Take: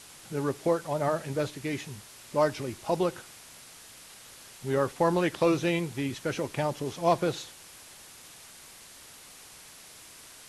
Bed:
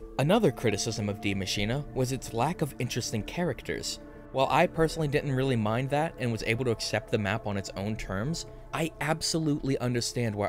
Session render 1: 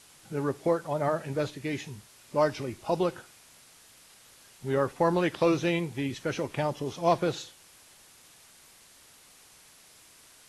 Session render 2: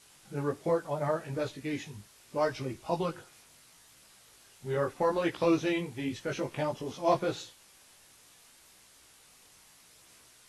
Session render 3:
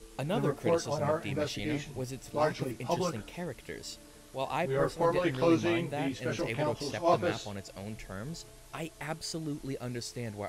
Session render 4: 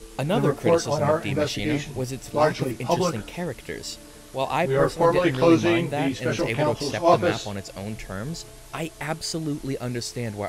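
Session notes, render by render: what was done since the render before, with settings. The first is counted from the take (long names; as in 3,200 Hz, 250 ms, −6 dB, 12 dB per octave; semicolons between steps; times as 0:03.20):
noise reduction from a noise print 6 dB
multi-voice chorus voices 2, 0.74 Hz, delay 18 ms, depth 3 ms
mix in bed −9 dB
level +8.5 dB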